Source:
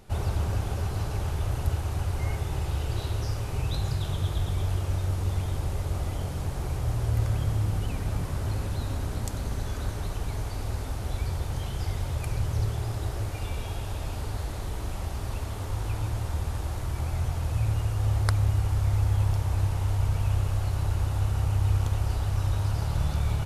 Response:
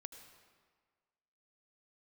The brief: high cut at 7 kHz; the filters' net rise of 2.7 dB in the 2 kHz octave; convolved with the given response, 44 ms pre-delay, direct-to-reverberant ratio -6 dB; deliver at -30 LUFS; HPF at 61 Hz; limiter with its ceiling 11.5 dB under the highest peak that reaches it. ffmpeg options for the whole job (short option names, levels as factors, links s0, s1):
-filter_complex "[0:a]highpass=61,lowpass=7000,equalizer=f=2000:t=o:g=3.5,alimiter=limit=0.1:level=0:latency=1,asplit=2[s0][s1];[1:a]atrim=start_sample=2205,adelay=44[s2];[s1][s2]afir=irnorm=-1:irlink=0,volume=3.55[s3];[s0][s3]amix=inputs=2:normalize=0,volume=0.531"